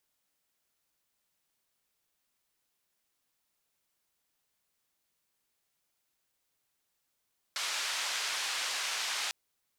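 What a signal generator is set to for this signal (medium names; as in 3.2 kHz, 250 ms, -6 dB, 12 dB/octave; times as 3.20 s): noise band 970–5400 Hz, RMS -34.5 dBFS 1.75 s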